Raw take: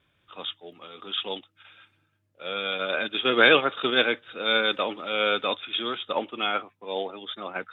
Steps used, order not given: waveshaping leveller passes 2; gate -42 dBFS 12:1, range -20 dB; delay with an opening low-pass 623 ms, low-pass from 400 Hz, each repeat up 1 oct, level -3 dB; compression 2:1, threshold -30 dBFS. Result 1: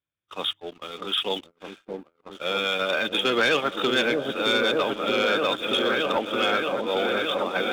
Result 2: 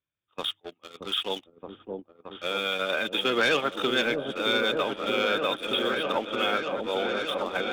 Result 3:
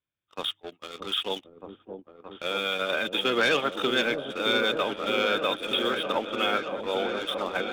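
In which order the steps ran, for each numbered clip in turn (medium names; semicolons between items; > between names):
delay with an opening low-pass > compression > waveshaping leveller > gate; gate > waveshaping leveller > delay with an opening low-pass > compression; waveshaping leveller > compression > gate > delay with an opening low-pass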